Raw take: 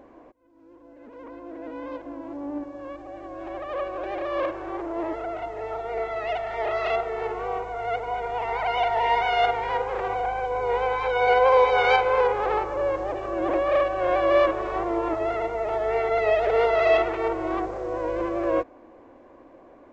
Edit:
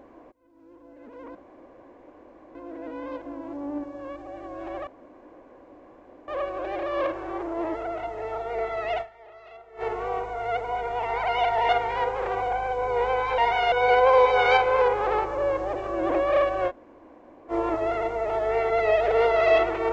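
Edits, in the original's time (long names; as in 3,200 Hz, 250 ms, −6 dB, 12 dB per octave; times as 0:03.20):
0:01.35: splice in room tone 1.20 s
0:03.67: splice in room tone 1.41 s
0:06.40–0:07.21: duck −21.5 dB, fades 0.30 s exponential
0:09.08–0:09.42: move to 0:11.11
0:14.08–0:14.90: fill with room tone, crossfade 0.06 s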